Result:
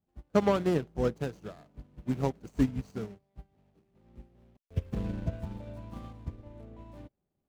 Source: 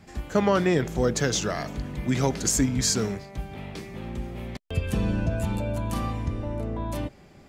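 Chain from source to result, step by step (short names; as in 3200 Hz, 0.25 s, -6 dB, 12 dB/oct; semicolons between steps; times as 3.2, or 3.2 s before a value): median filter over 25 samples; upward expander 2.5:1, over -39 dBFS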